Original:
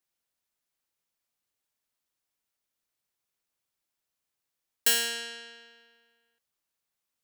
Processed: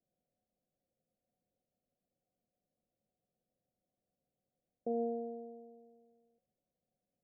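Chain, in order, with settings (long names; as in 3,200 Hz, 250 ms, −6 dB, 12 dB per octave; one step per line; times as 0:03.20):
brickwall limiter −18 dBFS, peak gain reduction 6 dB
Chebyshev low-pass with heavy ripple 760 Hz, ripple 9 dB
level +13.5 dB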